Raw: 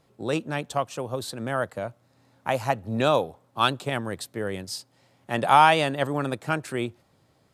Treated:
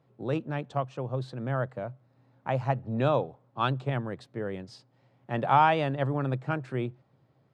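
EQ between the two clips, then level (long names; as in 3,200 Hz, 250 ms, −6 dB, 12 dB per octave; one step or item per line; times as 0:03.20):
high-pass filter 100 Hz
head-to-tape spacing loss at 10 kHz 27 dB
parametric band 130 Hz +12 dB 0.21 octaves
−2.5 dB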